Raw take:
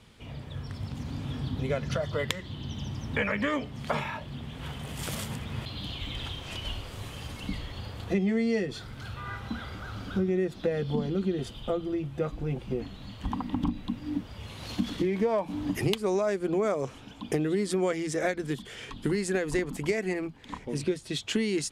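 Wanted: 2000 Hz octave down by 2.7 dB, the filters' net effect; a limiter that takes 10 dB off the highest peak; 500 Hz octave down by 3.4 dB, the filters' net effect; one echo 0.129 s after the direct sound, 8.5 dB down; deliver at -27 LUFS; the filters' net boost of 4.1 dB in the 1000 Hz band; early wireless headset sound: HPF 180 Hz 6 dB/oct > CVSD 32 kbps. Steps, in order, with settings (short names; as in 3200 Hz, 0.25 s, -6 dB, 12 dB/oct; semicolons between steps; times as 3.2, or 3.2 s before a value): bell 500 Hz -5.5 dB; bell 1000 Hz +8.5 dB; bell 2000 Hz -5.5 dB; limiter -21 dBFS; HPF 180 Hz 6 dB/oct; echo 0.129 s -8.5 dB; CVSD 32 kbps; gain +8 dB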